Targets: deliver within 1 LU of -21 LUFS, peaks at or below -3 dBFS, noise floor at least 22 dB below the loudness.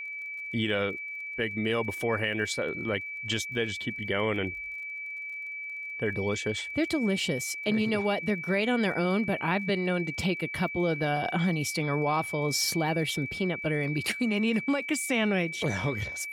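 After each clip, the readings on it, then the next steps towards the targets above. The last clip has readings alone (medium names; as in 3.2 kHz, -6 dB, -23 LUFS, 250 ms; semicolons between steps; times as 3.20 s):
tick rate 34 per s; steady tone 2.3 kHz; tone level -35 dBFS; loudness -29.0 LUFS; peak level -14.5 dBFS; loudness target -21.0 LUFS
-> de-click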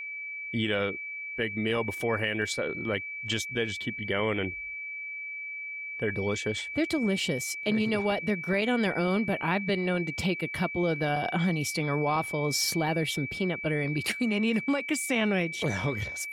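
tick rate 0.12 per s; steady tone 2.3 kHz; tone level -35 dBFS
-> band-stop 2.3 kHz, Q 30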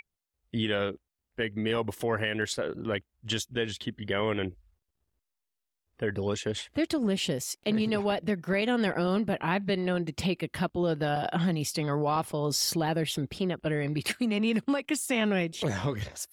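steady tone not found; loudness -29.5 LUFS; peak level -15.0 dBFS; loudness target -21.0 LUFS
-> trim +8.5 dB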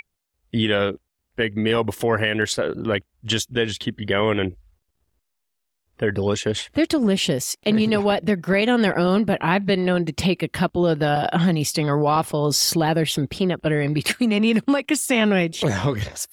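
loudness -21.0 LUFS; peak level -6.5 dBFS; noise floor -76 dBFS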